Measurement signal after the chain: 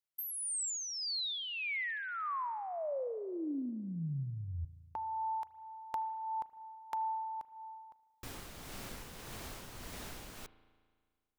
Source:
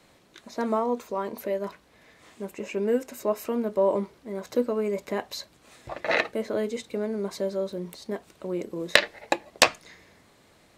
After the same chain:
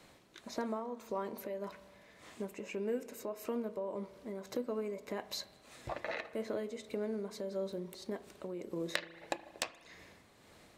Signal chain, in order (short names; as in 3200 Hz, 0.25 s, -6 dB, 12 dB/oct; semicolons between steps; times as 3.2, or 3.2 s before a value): compressor 3:1, threshold -35 dBFS; tremolo 1.7 Hz, depth 45%; spring tank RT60 1.8 s, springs 36 ms, chirp 45 ms, DRR 15 dB; gain -1 dB